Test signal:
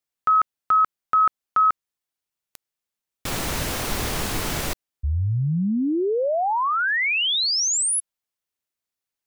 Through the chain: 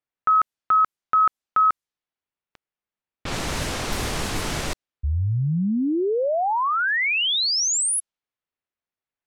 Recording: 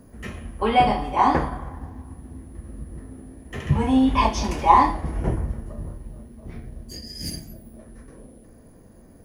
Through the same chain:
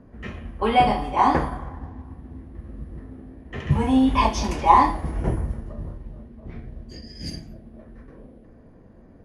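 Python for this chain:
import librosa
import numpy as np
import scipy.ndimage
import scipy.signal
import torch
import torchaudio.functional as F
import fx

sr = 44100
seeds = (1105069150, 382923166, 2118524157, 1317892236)

y = fx.env_lowpass(x, sr, base_hz=2500.0, full_db=-19.0)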